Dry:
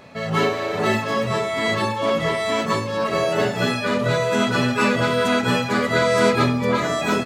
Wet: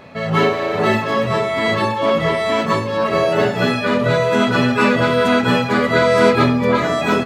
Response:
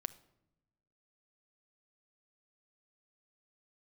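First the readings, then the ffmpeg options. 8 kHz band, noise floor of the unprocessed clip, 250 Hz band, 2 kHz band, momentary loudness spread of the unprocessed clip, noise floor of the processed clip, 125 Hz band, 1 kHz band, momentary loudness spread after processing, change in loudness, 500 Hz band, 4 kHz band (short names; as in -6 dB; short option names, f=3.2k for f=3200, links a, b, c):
-2.5 dB, -27 dBFS, +4.5 dB, +3.5 dB, 4 LU, -22 dBFS, +3.5 dB, +4.0 dB, 4 LU, +4.0 dB, +4.5 dB, +2.0 dB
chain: -filter_complex "[0:a]asplit=2[a][b];[1:a]atrim=start_sample=2205,asetrate=22050,aresample=44100,lowpass=4.9k[c];[b][c]afir=irnorm=-1:irlink=0,volume=-3.5dB[d];[a][d]amix=inputs=2:normalize=0,volume=-1dB"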